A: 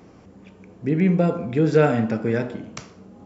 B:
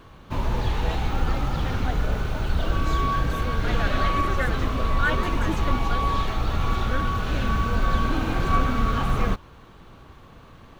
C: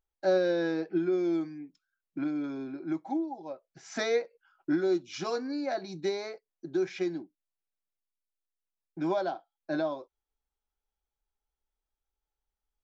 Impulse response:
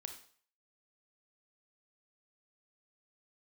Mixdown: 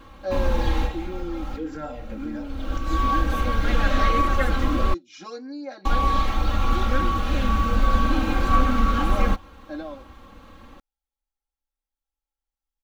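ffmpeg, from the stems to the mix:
-filter_complex "[0:a]asplit=2[s0][s1];[s1]afreqshift=-1.9[s2];[s0][s2]amix=inputs=2:normalize=1,volume=0.211,afade=t=in:st=1.24:d=0.45:silence=0.354813,asplit=2[s3][s4];[1:a]volume=0.841,asplit=3[s5][s6][s7];[s5]atrim=end=4.94,asetpts=PTS-STARTPTS,afade=t=out:st=4.936:d=0.004:c=hsin[s8];[s6]atrim=start=4.94:end=5.85,asetpts=PTS-STARTPTS,volume=0[s9];[s7]atrim=start=5.85,asetpts=PTS-STARTPTS,afade=t=in:d=0.004:c=hsin[s10];[s8][s9][s10]concat=n=3:v=0:a=1[s11];[2:a]volume=0.447[s12];[s4]apad=whole_len=476047[s13];[s11][s13]sidechaincompress=threshold=0.00126:ratio=4:attack=43:release=292[s14];[s3][s14][s12]amix=inputs=3:normalize=0,aecho=1:1:3.7:0.93"

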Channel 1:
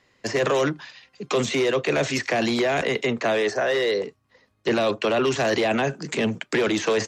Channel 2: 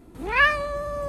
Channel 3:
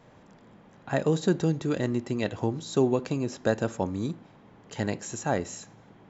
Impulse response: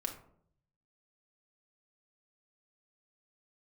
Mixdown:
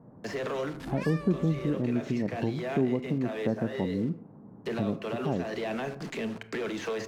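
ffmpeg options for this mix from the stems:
-filter_complex "[0:a]acrusher=bits=5:mix=0:aa=0.000001,aemphasis=mode=reproduction:type=50fm,volume=0.447,asplit=2[s0][s1];[s1]volume=0.422[s2];[1:a]adelay=650,volume=0.596[s3];[2:a]lowpass=f=1300:w=0.5412,lowpass=f=1300:w=1.3066,equalizer=f=200:w=0.58:g=13.5,volume=0.501,asplit=2[s4][s5];[s5]apad=whole_len=312024[s6];[s0][s6]sidechaincompress=threshold=0.0141:ratio=8:attack=16:release=204[s7];[s7][s3]amix=inputs=2:normalize=0,asoftclip=type=tanh:threshold=0.0422,alimiter=level_in=2.51:limit=0.0631:level=0:latency=1,volume=0.398,volume=1[s8];[3:a]atrim=start_sample=2205[s9];[s2][s9]afir=irnorm=-1:irlink=0[s10];[s4][s8][s10]amix=inputs=3:normalize=0,acompressor=threshold=0.02:ratio=1.5"

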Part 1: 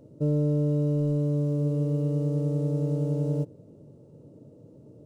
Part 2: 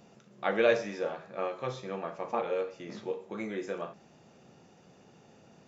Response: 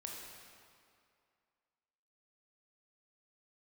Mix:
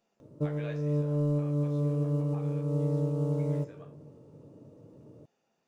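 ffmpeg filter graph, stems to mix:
-filter_complex "[0:a]equalizer=f=1100:t=o:w=0.7:g=10.5,adelay=200,volume=0.631,asplit=2[s0][s1];[s1]volume=0.316[s2];[1:a]equalizer=f=80:w=0.41:g=-13.5,flanger=delay=8.4:depth=5.4:regen=62:speed=1:shape=triangular,volume=0.251,asplit=2[s3][s4];[s4]apad=whole_len=231773[s5];[s0][s5]sidechaincompress=threshold=0.00282:ratio=8:attack=16:release=208[s6];[2:a]atrim=start_sample=2205[s7];[s2][s7]afir=irnorm=-1:irlink=0[s8];[s6][s3][s8]amix=inputs=3:normalize=0"

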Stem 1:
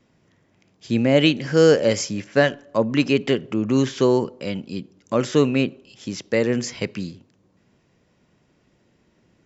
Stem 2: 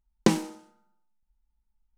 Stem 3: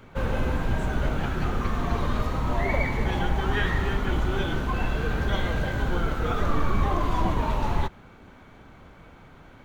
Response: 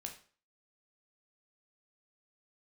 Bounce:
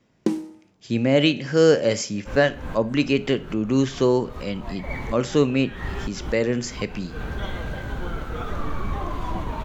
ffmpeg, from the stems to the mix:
-filter_complex "[0:a]volume=0.596,asplit=3[s0][s1][s2];[s1]volume=0.631[s3];[1:a]equalizer=f=300:t=o:w=0.99:g=15,volume=0.224,asplit=2[s4][s5];[s5]volume=0.398[s6];[2:a]adelay=2100,volume=0.631[s7];[s2]apad=whole_len=518056[s8];[s7][s8]sidechaincompress=threshold=0.00631:ratio=4:attack=26:release=129[s9];[3:a]atrim=start_sample=2205[s10];[s3][s6]amix=inputs=2:normalize=0[s11];[s11][s10]afir=irnorm=-1:irlink=0[s12];[s0][s4][s9][s12]amix=inputs=4:normalize=0"

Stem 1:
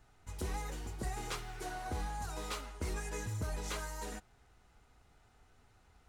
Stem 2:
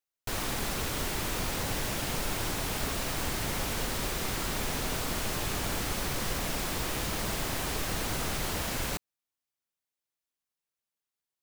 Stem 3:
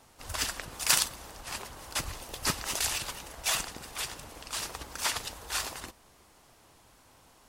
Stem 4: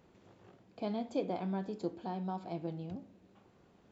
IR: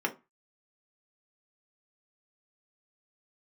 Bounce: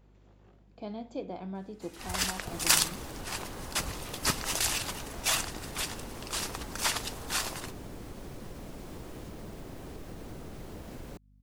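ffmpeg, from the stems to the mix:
-filter_complex "[0:a]acrossover=split=4000[s0][s1];[s1]acompressor=threshold=0.00126:ratio=4:attack=1:release=60[s2];[s0][s2]amix=inputs=2:normalize=0,highpass=1500,adelay=1550,volume=1.33[s3];[1:a]equalizer=f=600:w=0.44:g=6,acrossover=split=450[s4][s5];[s5]acompressor=threshold=0.00708:ratio=6[s6];[s4][s6]amix=inputs=2:normalize=0,adelay=2200,volume=0.631[s7];[2:a]adelay=1800,volume=1.12[s8];[3:a]volume=0.708[s9];[s3][s7]amix=inputs=2:normalize=0,aeval=exprs='val(0)+0.00112*(sin(2*PI*50*n/s)+sin(2*PI*2*50*n/s)/2+sin(2*PI*3*50*n/s)/3+sin(2*PI*4*50*n/s)/4+sin(2*PI*5*50*n/s)/5)':c=same,acompressor=threshold=0.00891:ratio=3,volume=1[s10];[s8][s9][s10]amix=inputs=3:normalize=0"

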